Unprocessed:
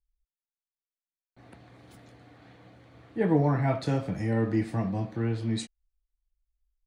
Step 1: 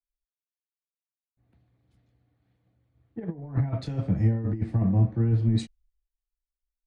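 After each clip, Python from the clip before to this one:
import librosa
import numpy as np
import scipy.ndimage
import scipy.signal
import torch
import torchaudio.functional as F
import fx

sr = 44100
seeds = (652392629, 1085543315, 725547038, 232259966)

y = fx.over_compress(x, sr, threshold_db=-28.0, ratio=-0.5)
y = fx.riaa(y, sr, side='playback')
y = fx.band_widen(y, sr, depth_pct=100)
y = y * 10.0 ** (-6.0 / 20.0)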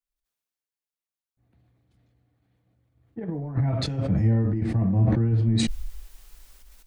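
y = fx.sustainer(x, sr, db_per_s=25.0)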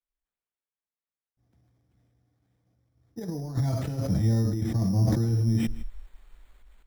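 y = x + 10.0 ** (-18.5 / 20.0) * np.pad(x, (int(160 * sr / 1000.0), 0))[:len(x)]
y = np.repeat(scipy.signal.resample_poly(y, 1, 8), 8)[:len(y)]
y = y * 10.0 ** (-2.5 / 20.0)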